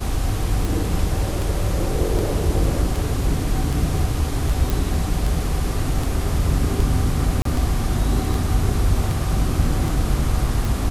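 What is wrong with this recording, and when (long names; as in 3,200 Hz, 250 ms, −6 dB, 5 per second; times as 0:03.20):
scratch tick 78 rpm
0:04.70: click
0:07.42–0:07.45: drop-out 33 ms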